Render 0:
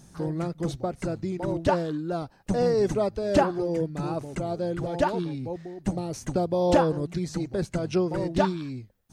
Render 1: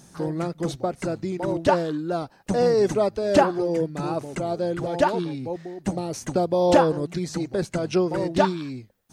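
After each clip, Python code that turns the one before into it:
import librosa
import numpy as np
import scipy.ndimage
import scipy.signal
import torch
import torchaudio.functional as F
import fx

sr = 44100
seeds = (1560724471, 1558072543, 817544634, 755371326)

y = fx.low_shelf(x, sr, hz=120.0, db=-12.0)
y = y * librosa.db_to_amplitude(4.5)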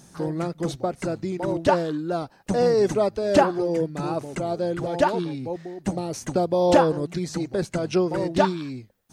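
y = x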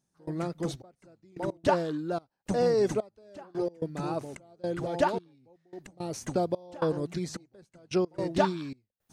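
y = fx.step_gate(x, sr, bpm=110, pattern='..xxxx....x.xxxx', floor_db=-24.0, edge_ms=4.5)
y = y * librosa.db_to_amplitude(-5.0)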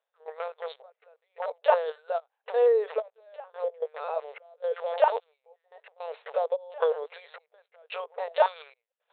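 y = fx.lpc_vocoder(x, sr, seeds[0], excitation='pitch_kept', order=10)
y = fx.brickwall_highpass(y, sr, low_hz=430.0)
y = y * librosa.db_to_amplitude(4.5)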